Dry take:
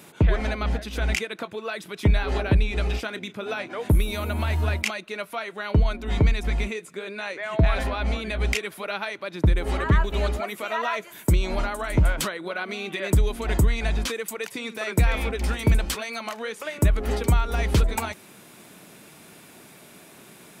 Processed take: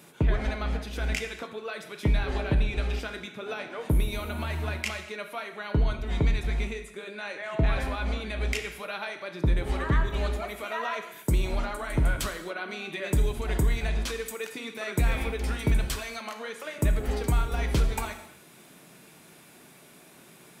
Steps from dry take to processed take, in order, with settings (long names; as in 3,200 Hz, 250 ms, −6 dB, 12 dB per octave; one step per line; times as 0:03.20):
reverb whose tail is shaped and stops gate 300 ms falling, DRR 5.5 dB
level −5.5 dB